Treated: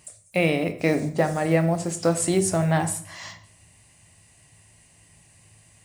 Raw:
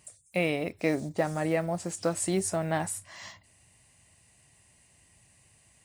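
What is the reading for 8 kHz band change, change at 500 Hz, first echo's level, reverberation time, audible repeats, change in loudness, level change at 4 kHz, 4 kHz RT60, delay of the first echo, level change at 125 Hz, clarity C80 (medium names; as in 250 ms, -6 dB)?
+6.0 dB, +6.0 dB, no echo, 0.55 s, no echo, +6.5 dB, +6.0 dB, 0.55 s, no echo, +9.5 dB, 16.5 dB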